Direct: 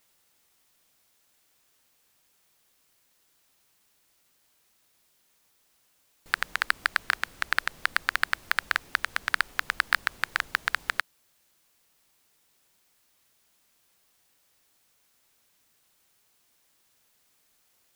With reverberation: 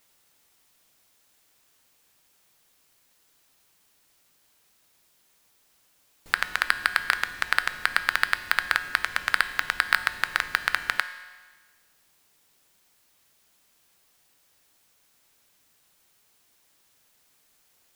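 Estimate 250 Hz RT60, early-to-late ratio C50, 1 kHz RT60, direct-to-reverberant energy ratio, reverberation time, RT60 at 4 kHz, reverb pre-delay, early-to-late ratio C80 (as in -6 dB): 1.4 s, 12.5 dB, 1.4 s, 10.0 dB, 1.4 s, 1.4 s, 5 ms, 13.5 dB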